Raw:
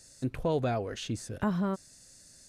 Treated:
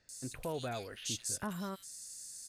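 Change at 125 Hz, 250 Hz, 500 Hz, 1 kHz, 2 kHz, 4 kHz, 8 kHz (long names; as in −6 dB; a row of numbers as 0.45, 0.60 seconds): −11.5, −11.0, −10.0, −7.5, −4.5, +0.5, +8.0 decibels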